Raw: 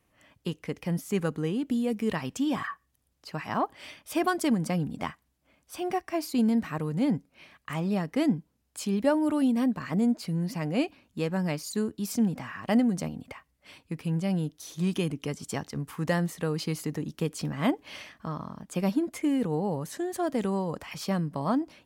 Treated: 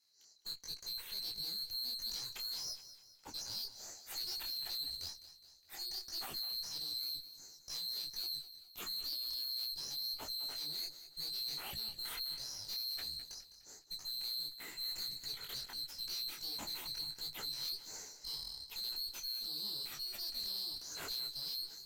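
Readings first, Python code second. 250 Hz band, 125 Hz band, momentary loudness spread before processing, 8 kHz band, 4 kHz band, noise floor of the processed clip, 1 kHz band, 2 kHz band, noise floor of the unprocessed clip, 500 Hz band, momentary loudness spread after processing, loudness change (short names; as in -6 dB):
-37.0 dB, -31.0 dB, 12 LU, -4.0 dB, +7.0 dB, -62 dBFS, -22.0 dB, -16.0 dB, -73 dBFS, -30.0 dB, 8 LU, -10.0 dB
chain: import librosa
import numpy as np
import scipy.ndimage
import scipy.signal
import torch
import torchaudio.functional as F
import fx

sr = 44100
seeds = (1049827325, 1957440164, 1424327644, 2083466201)

y = fx.band_swap(x, sr, width_hz=4000)
y = fx.tube_stage(y, sr, drive_db=37.0, bias=0.45)
y = fx.echo_feedback(y, sr, ms=207, feedback_pct=48, wet_db=-13.5)
y = fx.detune_double(y, sr, cents=50)
y = F.gain(torch.from_numpy(y), 1.0).numpy()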